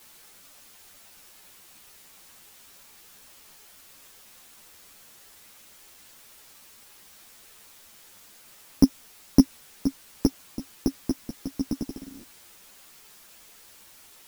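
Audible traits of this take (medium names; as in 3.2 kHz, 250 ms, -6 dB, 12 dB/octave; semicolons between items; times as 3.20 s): a buzz of ramps at a fixed pitch in blocks of 8 samples; tremolo triangle 1.3 Hz, depth 80%; a quantiser's noise floor 10-bit, dither triangular; a shimmering, thickened sound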